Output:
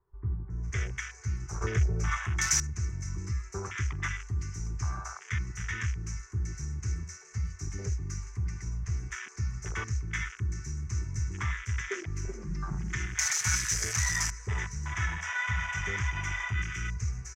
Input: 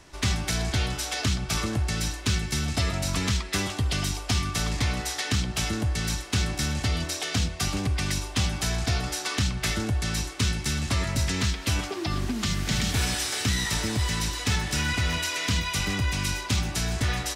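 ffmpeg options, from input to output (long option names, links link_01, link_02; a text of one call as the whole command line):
ffmpeg -i in.wav -filter_complex "[0:a]firequalizer=gain_entry='entry(100,0);entry(180,-7);entry(260,-25);entry(400,6);entry(590,-15);entry(1000,6);entry(2100,6);entry(3400,-22);entry(6100,14);entry(9900,-12)':delay=0.05:min_phase=1,asettb=1/sr,asplit=3[link_01][link_02][link_03];[link_01]atrim=end=1.614[link_04];[link_02]atrim=start=1.61:end=2.17,asetpts=PTS-STARTPTS,afade=type=in:duration=0.004:curve=qsin,afade=type=out:start_time=0.556:duration=0.004:curve=qsin,acontrast=64[link_05];[link_03]atrim=start=2.166[link_06];[link_04][link_05]acrossfade=duration=0.004:curve1=hsin:curve2=qsin[link_07];[link_07][link_06]acrossfade=duration=0.004:curve1=qsin:curve2=hsin,asettb=1/sr,asplit=3[link_08][link_09][link_10];[link_08]atrim=end=7.994[link_11];[link_09]atrim=start=7.99:end=8.47,asetpts=PTS-STARTPTS,afade=type=in:duration=0.004:curve=qsin,afade=type=out:start_time=0.476:duration=0.004:curve=qsin,highshelf=frequency=6500:gain=-8.5[link_12];[link_10]atrim=start=8.466[link_13];[link_11][link_12]acrossfade=duration=0.004:curve1=hsin:curve2=qsin[link_14];[link_14][link_13]acrossfade=duration=0.004:curve1=qsin:curve2=hsin,asettb=1/sr,asplit=3[link_15][link_16][link_17];[link_15]atrim=end=12.274[link_18];[link_16]atrim=start=12.27:end=13.07,asetpts=PTS-STARTPTS,afade=type=in:duration=0.004:curve=qsin,afade=type=out:start_time=0.796:duration=0.004:curve=qsin,aecho=1:1:5.5:0.88,atrim=end_sample=35280[link_19];[link_17]atrim=start=13.066[link_20];[link_18][link_19]acrossfade=duration=0.004:curve1=hsin:curve2=qsin[link_21];[link_21][link_20]acrossfade=duration=0.004:curve1=qsin:curve2=hsin,acrossover=split=1000[link_22][link_23];[link_23]adelay=500[link_24];[link_22][link_24]amix=inputs=2:normalize=0,afwtdn=0.0398,volume=-4.5dB" out.wav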